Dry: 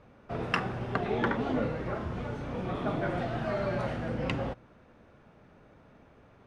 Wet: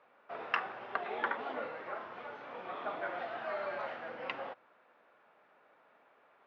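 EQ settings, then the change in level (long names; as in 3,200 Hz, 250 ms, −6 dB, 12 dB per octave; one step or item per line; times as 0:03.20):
resonant band-pass 770 Hz, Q 0.73
high-frequency loss of the air 260 metres
first difference
+16.5 dB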